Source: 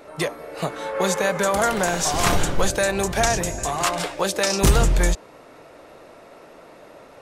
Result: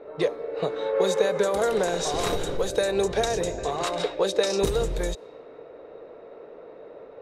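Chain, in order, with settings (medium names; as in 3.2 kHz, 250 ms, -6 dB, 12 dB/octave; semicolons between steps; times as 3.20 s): level-controlled noise filter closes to 2 kHz, open at -15.5 dBFS; compression 6:1, threshold -19 dBFS, peak gain reduction 8.5 dB; small resonant body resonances 450/3800 Hz, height 15 dB, ringing for 25 ms; trim -6.5 dB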